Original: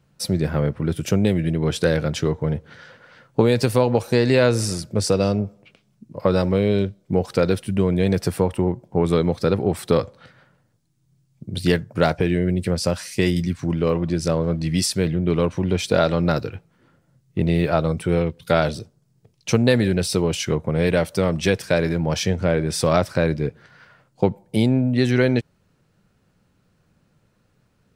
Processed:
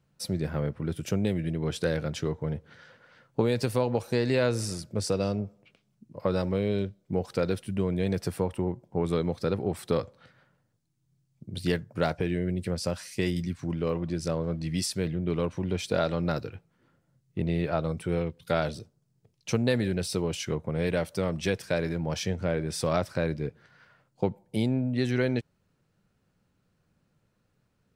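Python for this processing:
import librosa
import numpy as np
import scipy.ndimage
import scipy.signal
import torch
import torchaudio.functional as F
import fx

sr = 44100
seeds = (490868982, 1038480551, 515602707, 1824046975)

y = fx.high_shelf(x, sr, hz=7500.0, db=-9.0, at=(17.42, 17.83))
y = y * 10.0 ** (-8.5 / 20.0)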